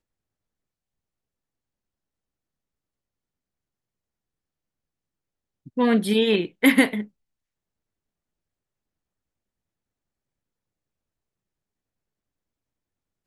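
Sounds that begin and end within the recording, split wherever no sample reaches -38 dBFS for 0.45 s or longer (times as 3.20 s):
5.67–7.05 s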